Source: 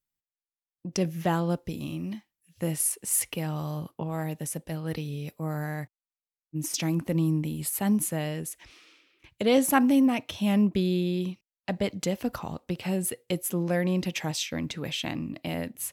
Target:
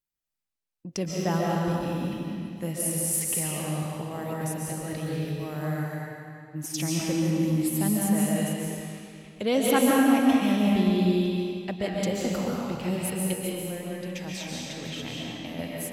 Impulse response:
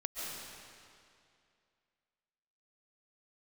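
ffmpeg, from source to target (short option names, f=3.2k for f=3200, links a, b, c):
-filter_complex "[0:a]asettb=1/sr,asplit=3[a][b][c];[a]atrim=end=13.334[d];[b]atrim=start=13.33:end=15.59,asetpts=PTS-STARTPTS,afade=t=in:d=0.004:c=qsin,afade=t=out:st=2.256:d=0.004:c=qsin,acompressor=threshold=-33dB:ratio=6[e];[c]atrim=start=15.586[f];[d][e]acrossfade=d=0.004:c1=hsin:c2=qsin[g];[g][f]acrossfade=d=0.004:c1=qsin:c2=hsin[h];[1:a]atrim=start_sample=2205[i];[h][i]afir=irnorm=-1:irlink=0"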